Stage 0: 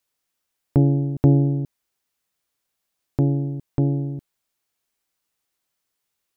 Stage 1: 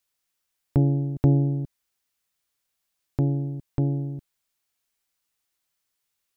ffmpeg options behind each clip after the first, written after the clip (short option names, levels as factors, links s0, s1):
-af "equalizer=f=360:w=0.36:g=-5"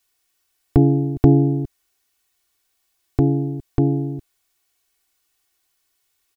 -af "aecho=1:1:2.7:0.81,volume=2.11"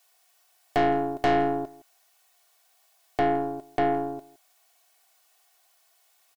-af "highpass=f=660:t=q:w=3.4,aeval=exprs='(tanh(17.8*val(0)+0.4)-tanh(0.4))/17.8':c=same,aecho=1:1:165:0.0891,volume=2.11"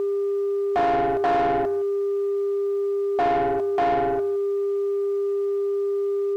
-filter_complex "[0:a]highpass=f=310:p=1,aeval=exprs='val(0)+0.0251*sin(2*PI*400*n/s)':c=same,asplit=2[s0][s1];[s1]highpass=f=720:p=1,volume=17.8,asoftclip=type=tanh:threshold=0.211[s2];[s0][s2]amix=inputs=2:normalize=0,lowpass=f=1400:p=1,volume=0.501"